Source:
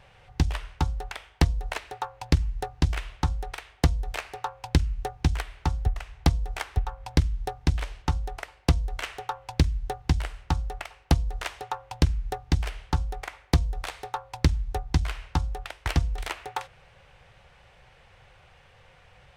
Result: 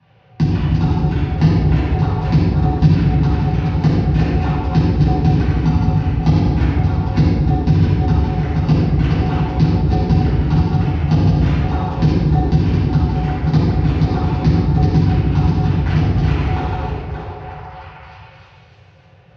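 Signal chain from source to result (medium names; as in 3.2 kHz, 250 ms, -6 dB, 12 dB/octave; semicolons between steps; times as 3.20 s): backward echo that repeats 287 ms, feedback 41%, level -4 dB; steep low-pass 5.6 kHz 36 dB/octave; gate -42 dBFS, range -15 dB; high-pass 84 Hz 24 dB/octave; bass shelf 460 Hz +11 dB; on a send: repeats whose band climbs or falls 308 ms, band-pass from 310 Hz, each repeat 0.7 oct, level -6.5 dB; on the sum: simulated room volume 1000 m³, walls mixed, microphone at 9.7 m; three bands compressed up and down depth 40%; trim -12.5 dB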